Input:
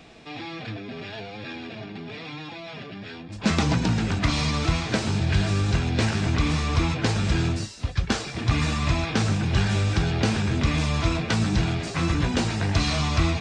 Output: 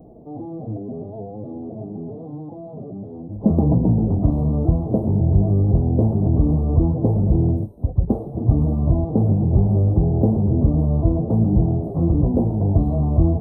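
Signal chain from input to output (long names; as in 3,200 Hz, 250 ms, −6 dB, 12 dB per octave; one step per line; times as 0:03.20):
inverse Chebyshev band-stop filter 1,500–7,700 Hz, stop band 50 dB
level +6.5 dB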